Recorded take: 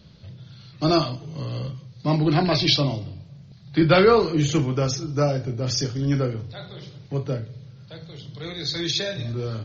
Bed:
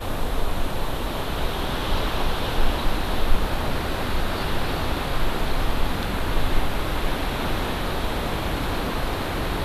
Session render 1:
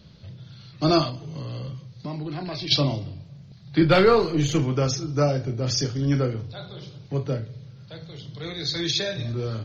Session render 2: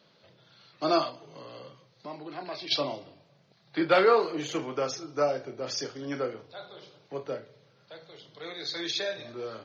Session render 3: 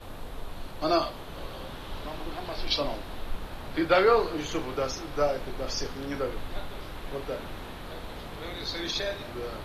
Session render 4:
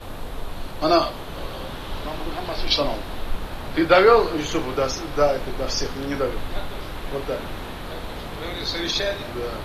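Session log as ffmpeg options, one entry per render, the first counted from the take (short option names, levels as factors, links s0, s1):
-filter_complex "[0:a]asplit=3[s0][s1][s2];[s0]afade=t=out:st=1.09:d=0.02[s3];[s1]acompressor=threshold=0.0355:ratio=6:attack=3.2:release=140:knee=1:detection=peak,afade=t=in:st=1.09:d=0.02,afade=t=out:st=2.7:d=0.02[s4];[s2]afade=t=in:st=2.7:d=0.02[s5];[s3][s4][s5]amix=inputs=3:normalize=0,asettb=1/sr,asplit=3[s6][s7][s8];[s6]atrim=end=3.844[s9];[s7]atrim=start=3.84:end=4.62,asetpts=PTS-STARTPTS,afade=t=in:d=0.004:c=qsin,afade=t=out:st=0.776:d=0.004:c=qsin,aeval=exprs='if(lt(val(0),0),0.708*val(0),val(0))':c=same[s10];[s8]atrim=start=4.616[s11];[s9][s10]acrossfade=d=0.004:c1=hsin:c2=qsin[s12];[s12][s11]acrossfade=d=0.004:c1=qsin:c2=hsin,asettb=1/sr,asplit=3[s13][s14][s15];[s13]atrim=end=6.474[s16];[s14]atrim=start=6.47:end=7.08,asetpts=PTS-STARTPTS,afade=t=in:d=0.004:c=qsin,afade=t=out:st=0.606:d=0.004:c=qsin,equalizer=f=1900:w=7.2:g=-11[s17];[s15]atrim=start=7.076[s18];[s16][s17]acrossfade=d=0.004:c1=hsin:c2=qsin[s19];[s19][s18]acrossfade=d=0.004:c1=qsin:c2=hsin"
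-af "highpass=500,highshelf=f=2800:g=-10"
-filter_complex "[1:a]volume=0.188[s0];[0:a][s0]amix=inputs=2:normalize=0"
-af "volume=2.24"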